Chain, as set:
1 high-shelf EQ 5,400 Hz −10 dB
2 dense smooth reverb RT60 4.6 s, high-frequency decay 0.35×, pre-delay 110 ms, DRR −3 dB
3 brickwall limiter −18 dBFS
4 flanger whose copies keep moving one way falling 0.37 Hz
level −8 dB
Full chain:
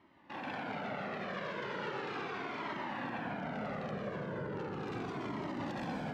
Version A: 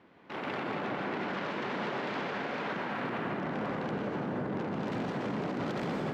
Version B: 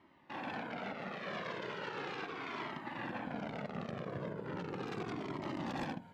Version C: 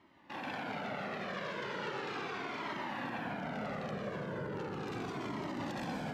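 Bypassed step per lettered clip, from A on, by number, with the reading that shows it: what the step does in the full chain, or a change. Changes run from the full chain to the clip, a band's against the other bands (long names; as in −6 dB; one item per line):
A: 4, 250 Hz band +2.0 dB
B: 2, change in crest factor +2.0 dB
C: 1, 4 kHz band +2.5 dB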